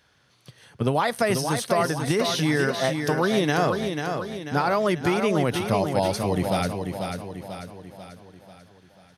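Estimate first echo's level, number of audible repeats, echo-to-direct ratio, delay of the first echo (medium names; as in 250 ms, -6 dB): -6.0 dB, 5, -5.0 dB, 491 ms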